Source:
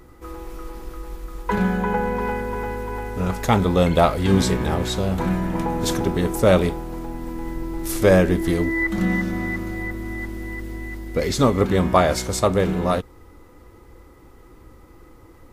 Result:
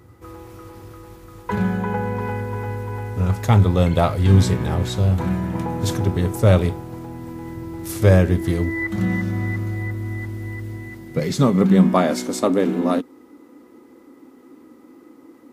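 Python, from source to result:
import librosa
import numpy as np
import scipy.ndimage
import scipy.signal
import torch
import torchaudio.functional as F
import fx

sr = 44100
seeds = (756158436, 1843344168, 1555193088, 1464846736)

y = fx.filter_sweep_highpass(x, sr, from_hz=100.0, to_hz=260.0, start_s=10.55, end_s=12.3, q=5.6)
y = F.gain(torch.from_numpy(y), -3.0).numpy()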